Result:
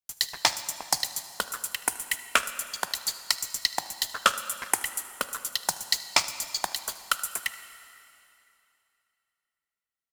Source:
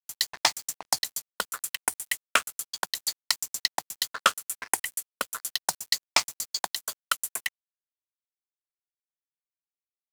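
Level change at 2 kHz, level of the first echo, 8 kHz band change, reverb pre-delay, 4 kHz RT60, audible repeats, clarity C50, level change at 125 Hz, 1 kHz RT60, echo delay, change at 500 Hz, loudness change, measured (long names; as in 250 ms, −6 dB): +0.5 dB, −20.5 dB, +0.5 dB, 7 ms, 2.6 s, 1, 11.5 dB, can't be measured, 2.8 s, 77 ms, +1.0 dB, +0.5 dB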